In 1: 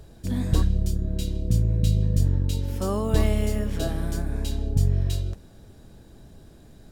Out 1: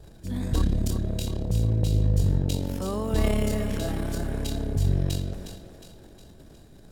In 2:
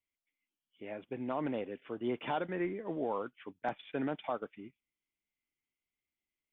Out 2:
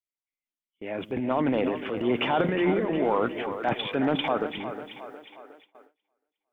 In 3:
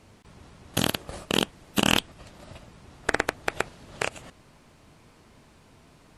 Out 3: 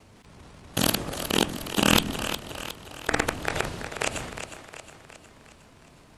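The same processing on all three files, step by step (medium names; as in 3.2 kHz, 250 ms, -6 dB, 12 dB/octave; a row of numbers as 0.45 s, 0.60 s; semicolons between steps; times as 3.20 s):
transient shaper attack -2 dB, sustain +11 dB; two-band feedback delay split 330 Hz, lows 135 ms, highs 361 ms, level -9.5 dB; gate with hold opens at -51 dBFS; normalise loudness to -27 LUFS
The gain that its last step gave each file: -3.5 dB, +9.5 dB, +0.5 dB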